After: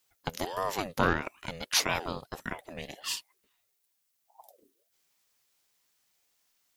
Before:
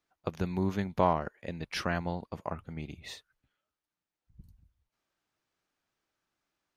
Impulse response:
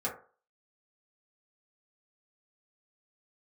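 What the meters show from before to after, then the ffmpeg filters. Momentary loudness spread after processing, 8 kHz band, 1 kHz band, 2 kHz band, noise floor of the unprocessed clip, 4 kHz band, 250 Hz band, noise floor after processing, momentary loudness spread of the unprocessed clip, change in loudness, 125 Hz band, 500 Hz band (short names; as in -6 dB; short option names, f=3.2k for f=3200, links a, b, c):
13 LU, +16.5 dB, 0.0 dB, +6.5 dB, under -85 dBFS, +10.5 dB, -3.5 dB, -77 dBFS, 14 LU, +1.5 dB, -4.5 dB, -1.5 dB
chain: -af "crystalizer=i=8:c=0,aeval=exprs='val(0)*sin(2*PI*590*n/s+590*0.45/1.6*sin(2*PI*1.6*n/s))':c=same"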